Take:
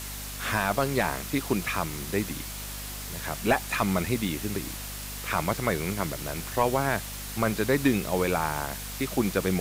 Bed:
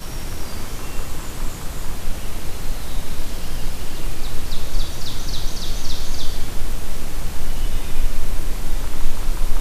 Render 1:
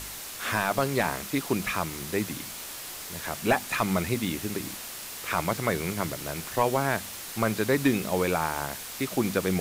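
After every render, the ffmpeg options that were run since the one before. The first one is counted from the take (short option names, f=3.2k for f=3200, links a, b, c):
-af "bandreject=f=50:t=h:w=4,bandreject=f=100:t=h:w=4,bandreject=f=150:t=h:w=4,bandreject=f=200:t=h:w=4,bandreject=f=250:t=h:w=4"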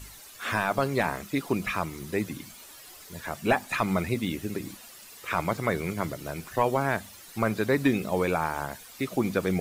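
-af "afftdn=nr=12:nf=-39"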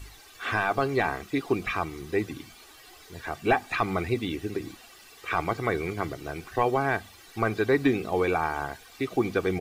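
-filter_complex "[0:a]acrossover=split=5200[a][b];[b]acompressor=threshold=-57dB:ratio=4:attack=1:release=60[c];[a][c]amix=inputs=2:normalize=0,aecho=1:1:2.6:0.51"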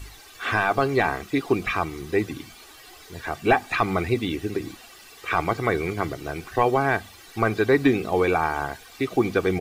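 -af "volume=4dB"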